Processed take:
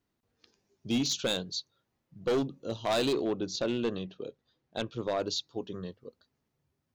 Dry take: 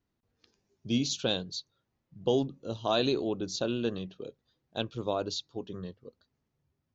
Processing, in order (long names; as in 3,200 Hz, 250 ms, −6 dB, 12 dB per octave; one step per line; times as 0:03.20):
low-shelf EQ 140 Hz −6.5 dB
hard clipping −26 dBFS, distortion −10 dB
0:03.13–0:05.20: high-frequency loss of the air 62 metres
level +2.5 dB